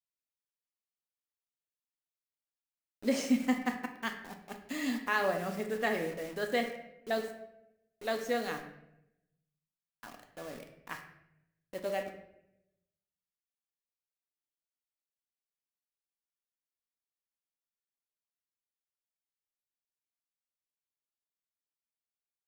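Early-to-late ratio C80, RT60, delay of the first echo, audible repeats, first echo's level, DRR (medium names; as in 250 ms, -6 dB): 11.0 dB, 0.85 s, no echo, no echo, no echo, 4.0 dB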